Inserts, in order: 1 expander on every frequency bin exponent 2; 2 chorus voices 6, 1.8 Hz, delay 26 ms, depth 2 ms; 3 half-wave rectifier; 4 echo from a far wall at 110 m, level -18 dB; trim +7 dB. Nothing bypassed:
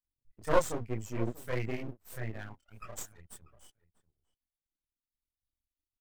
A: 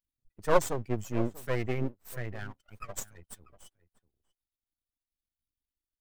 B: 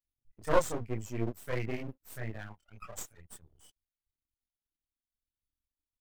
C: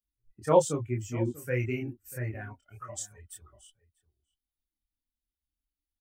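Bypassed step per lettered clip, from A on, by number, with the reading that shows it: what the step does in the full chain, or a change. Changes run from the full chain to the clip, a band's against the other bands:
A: 2, momentary loudness spread change -1 LU; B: 4, echo-to-direct -20.0 dB to none; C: 3, 4 kHz band -4.0 dB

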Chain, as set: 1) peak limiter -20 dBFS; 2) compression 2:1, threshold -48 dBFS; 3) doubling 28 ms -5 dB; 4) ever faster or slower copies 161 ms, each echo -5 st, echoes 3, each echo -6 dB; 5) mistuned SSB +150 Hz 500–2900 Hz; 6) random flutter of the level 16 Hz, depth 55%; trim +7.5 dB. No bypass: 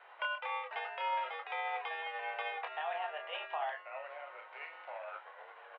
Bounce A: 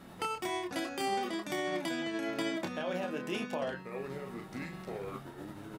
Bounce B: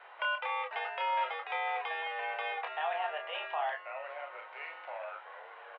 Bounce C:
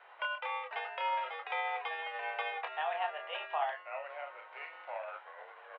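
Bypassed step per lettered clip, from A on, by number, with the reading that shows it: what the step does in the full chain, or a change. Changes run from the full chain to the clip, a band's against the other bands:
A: 5, 500 Hz band +8.5 dB; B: 6, loudness change +3.5 LU; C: 1, mean gain reduction 2.0 dB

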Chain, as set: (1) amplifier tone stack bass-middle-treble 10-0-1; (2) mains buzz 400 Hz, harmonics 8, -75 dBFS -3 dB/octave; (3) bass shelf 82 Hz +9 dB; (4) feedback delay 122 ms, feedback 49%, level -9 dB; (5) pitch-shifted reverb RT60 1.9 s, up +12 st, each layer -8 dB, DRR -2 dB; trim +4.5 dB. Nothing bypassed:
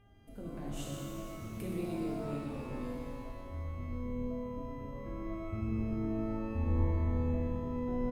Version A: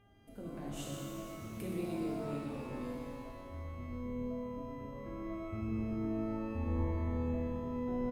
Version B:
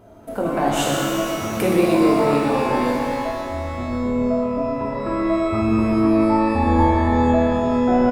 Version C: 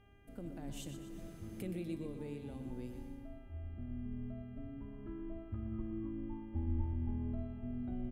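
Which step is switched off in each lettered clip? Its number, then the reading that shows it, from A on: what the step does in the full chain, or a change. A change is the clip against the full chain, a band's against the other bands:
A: 3, 125 Hz band -3.5 dB; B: 1, 125 Hz band -13.5 dB; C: 5, 1 kHz band -5.5 dB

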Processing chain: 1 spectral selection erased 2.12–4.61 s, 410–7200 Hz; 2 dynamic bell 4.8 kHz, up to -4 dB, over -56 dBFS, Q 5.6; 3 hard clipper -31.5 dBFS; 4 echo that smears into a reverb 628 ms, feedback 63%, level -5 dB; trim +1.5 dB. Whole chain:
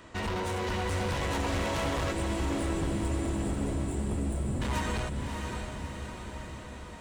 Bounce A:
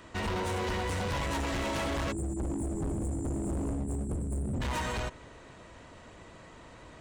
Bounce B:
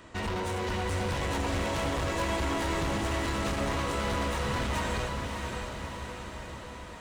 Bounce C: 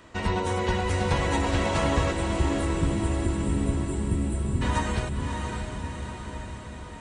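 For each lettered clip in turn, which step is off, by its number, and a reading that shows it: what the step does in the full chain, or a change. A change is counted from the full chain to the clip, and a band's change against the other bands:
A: 4, echo-to-direct -3.0 dB to none; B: 1, 250 Hz band -3.5 dB; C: 3, distortion -6 dB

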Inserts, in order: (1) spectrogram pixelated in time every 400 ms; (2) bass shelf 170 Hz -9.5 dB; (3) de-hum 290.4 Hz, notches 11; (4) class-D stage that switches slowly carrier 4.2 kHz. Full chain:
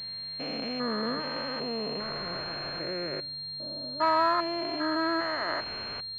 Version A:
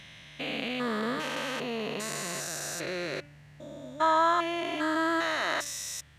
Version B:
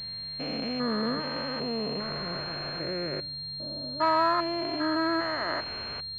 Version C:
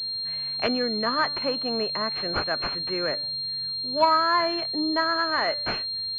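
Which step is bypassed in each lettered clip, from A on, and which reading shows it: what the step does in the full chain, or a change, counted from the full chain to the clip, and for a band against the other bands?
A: 4, 4 kHz band -5.0 dB; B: 2, 125 Hz band +4.5 dB; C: 1, 4 kHz band +3.5 dB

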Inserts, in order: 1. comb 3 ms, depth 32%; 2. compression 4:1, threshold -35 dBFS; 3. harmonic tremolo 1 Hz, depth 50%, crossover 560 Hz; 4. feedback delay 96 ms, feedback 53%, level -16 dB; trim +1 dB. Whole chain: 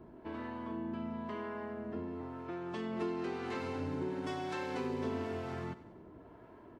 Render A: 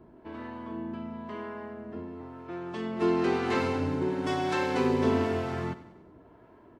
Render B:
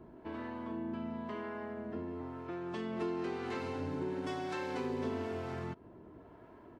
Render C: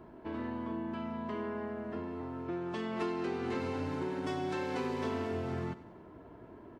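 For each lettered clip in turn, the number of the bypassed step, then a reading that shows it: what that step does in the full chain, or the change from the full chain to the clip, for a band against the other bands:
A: 2, mean gain reduction 5.0 dB; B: 4, echo-to-direct -14.5 dB to none; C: 3, loudness change +2.5 LU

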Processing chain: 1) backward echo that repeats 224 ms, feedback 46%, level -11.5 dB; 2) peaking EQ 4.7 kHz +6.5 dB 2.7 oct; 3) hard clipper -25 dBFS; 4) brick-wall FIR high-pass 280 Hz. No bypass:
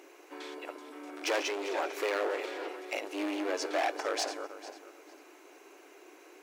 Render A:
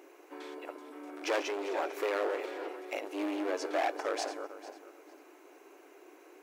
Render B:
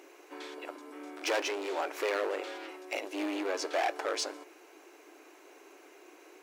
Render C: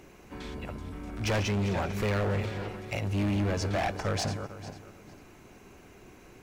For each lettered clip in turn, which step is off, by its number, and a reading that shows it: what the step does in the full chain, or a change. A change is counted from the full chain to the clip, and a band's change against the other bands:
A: 2, 8 kHz band -5.0 dB; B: 1, momentary loudness spread change -4 LU; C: 4, 250 Hz band +6.5 dB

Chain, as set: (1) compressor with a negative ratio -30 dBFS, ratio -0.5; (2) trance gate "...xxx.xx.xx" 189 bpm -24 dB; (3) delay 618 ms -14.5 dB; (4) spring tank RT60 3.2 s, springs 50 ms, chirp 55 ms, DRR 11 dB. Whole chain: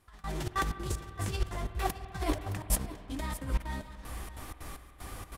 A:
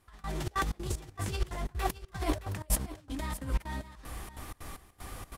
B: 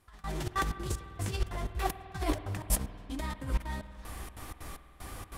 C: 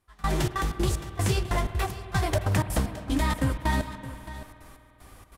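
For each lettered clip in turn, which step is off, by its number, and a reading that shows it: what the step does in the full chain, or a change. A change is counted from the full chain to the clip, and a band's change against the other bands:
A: 4, echo-to-direct -9.5 dB to -14.5 dB; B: 3, echo-to-direct -9.5 dB to -11.0 dB; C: 1, crest factor change -6.5 dB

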